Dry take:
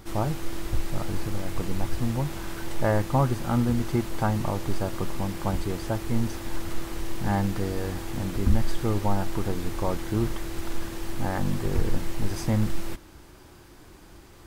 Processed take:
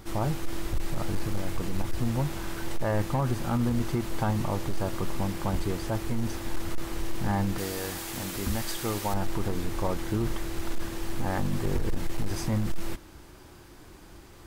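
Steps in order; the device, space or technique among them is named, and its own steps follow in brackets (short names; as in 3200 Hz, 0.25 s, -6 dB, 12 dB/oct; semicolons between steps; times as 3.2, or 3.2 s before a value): 7.58–9.14 tilt +2.5 dB/oct; limiter into clipper (limiter -17 dBFS, peak gain reduction 7 dB; hard clip -20 dBFS, distortion -22 dB)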